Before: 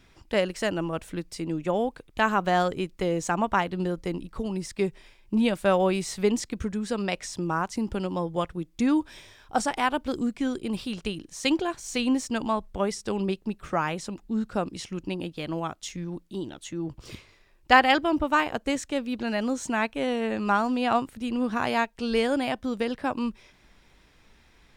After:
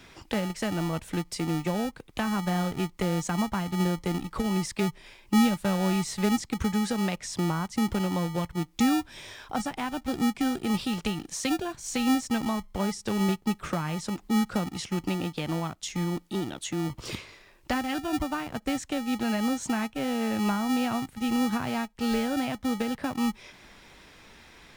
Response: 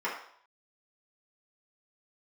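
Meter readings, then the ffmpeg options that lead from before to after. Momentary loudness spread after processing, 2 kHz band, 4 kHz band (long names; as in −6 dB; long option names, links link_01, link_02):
6 LU, −6.0 dB, −1.0 dB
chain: -filter_complex "[0:a]lowshelf=frequency=88:gain=-11.5,acrossover=split=220[link_01][link_02];[link_01]acrusher=samples=42:mix=1:aa=0.000001[link_03];[link_02]acompressor=threshold=-41dB:ratio=6[link_04];[link_03][link_04]amix=inputs=2:normalize=0,volume=9dB"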